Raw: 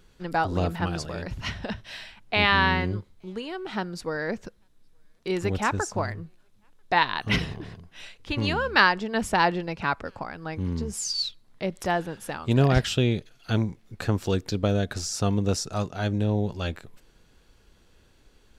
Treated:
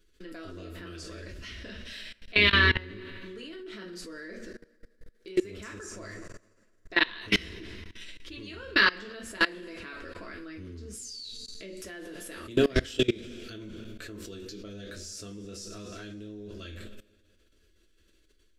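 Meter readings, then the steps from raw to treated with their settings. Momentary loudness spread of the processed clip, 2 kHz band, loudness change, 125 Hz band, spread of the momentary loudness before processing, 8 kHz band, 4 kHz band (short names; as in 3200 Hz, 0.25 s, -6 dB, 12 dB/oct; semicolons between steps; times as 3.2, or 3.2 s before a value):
20 LU, -1.0 dB, -1.5 dB, -12.5 dB, 15 LU, -8.5 dB, -1.0 dB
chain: fixed phaser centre 340 Hz, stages 4; two-slope reverb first 0.26 s, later 2.1 s, from -19 dB, DRR -1 dB; level quantiser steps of 22 dB; gain +2 dB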